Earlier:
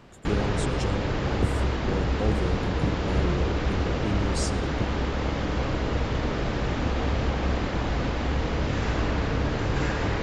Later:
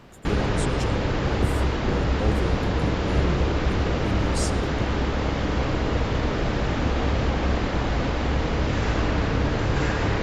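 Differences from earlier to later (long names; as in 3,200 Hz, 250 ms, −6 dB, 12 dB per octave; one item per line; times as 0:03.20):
speech: remove low-pass filter 8,400 Hz 12 dB per octave
background: send on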